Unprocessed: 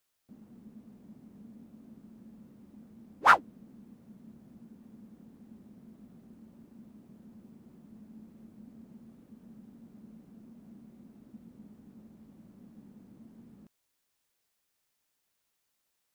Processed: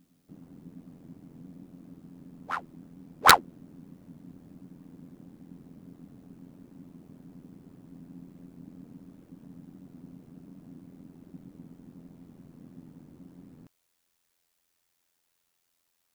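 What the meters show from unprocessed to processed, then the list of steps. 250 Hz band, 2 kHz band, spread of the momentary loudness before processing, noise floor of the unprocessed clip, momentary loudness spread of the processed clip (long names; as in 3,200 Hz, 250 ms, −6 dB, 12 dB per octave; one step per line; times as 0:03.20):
+3.5 dB, +4.0 dB, 3 LU, −80 dBFS, 18 LU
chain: ring modulation 43 Hz
backwards echo 762 ms −17.5 dB
wrap-around overflow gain 10.5 dB
level +6.5 dB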